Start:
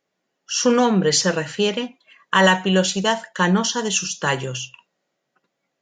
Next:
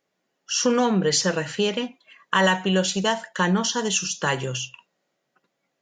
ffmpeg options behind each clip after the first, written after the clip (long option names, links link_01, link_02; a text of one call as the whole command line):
ffmpeg -i in.wav -af "acompressor=threshold=-23dB:ratio=1.5" out.wav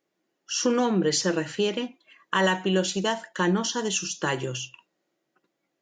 ffmpeg -i in.wav -af "equalizer=frequency=330:width_type=o:width=0.32:gain=12,volume=-4dB" out.wav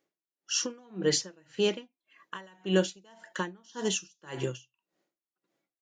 ffmpeg -i in.wav -af "aeval=exprs='val(0)*pow(10,-33*(0.5-0.5*cos(2*PI*1.8*n/s))/20)':channel_layout=same" out.wav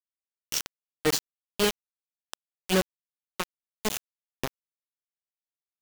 ffmpeg -i in.wav -af "aecho=1:1:563:0.112,acrusher=bits=3:mix=0:aa=0.000001" out.wav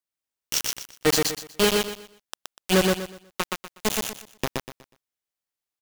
ffmpeg -i in.wav -af "aecho=1:1:122|244|366|488:0.708|0.198|0.0555|0.0155,volume=4dB" out.wav